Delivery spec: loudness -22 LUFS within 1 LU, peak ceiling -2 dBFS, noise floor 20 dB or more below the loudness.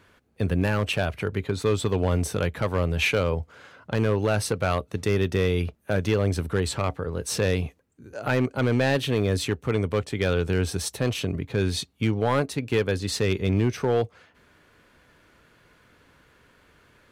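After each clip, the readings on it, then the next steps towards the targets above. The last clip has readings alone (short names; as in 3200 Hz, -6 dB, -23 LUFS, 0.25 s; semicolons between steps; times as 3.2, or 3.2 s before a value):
clipped 1.1%; flat tops at -15.0 dBFS; loudness -25.5 LUFS; peak -15.0 dBFS; loudness target -22.0 LUFS
-> clip repair -15 dBFS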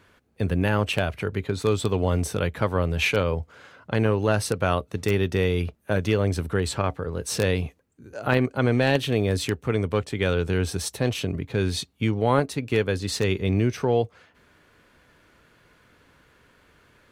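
clipped 0.0%; loudness -25.0 LUFS; peak -6.0 dBFS; loudness target -22.0 LUFS
-> gain +3 dB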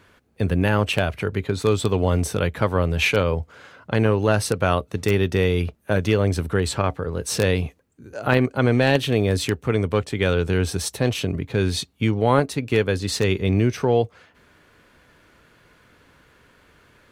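loudness -22.0 LUFS; peak -3.0 dBFS; noise floor -58 dBFS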